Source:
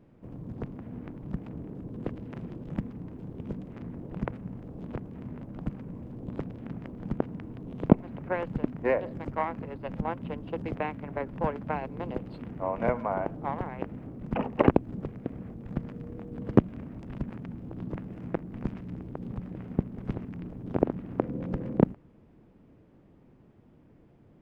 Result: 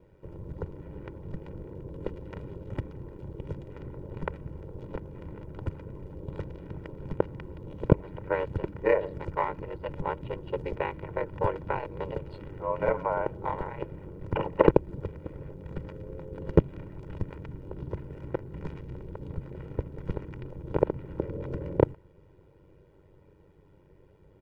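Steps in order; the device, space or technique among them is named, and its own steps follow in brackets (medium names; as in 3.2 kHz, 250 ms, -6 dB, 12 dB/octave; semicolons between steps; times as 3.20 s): ring-modulated robot voice (ring modulator 48 Hz; comb 2.1 ms, depth 77%); trim +2 dB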